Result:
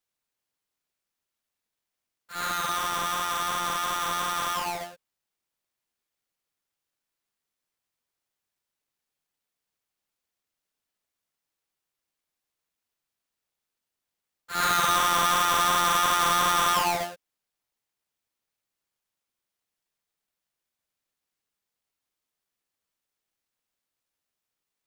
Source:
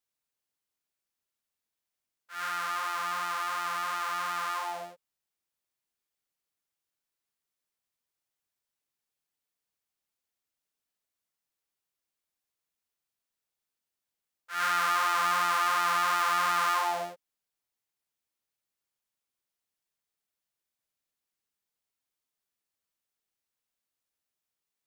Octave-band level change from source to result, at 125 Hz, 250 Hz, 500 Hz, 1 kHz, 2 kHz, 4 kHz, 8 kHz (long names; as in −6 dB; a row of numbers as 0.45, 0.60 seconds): +13.0, +11.0, +6.0, +3.5, +2.0, +8.5, +10.0 decibels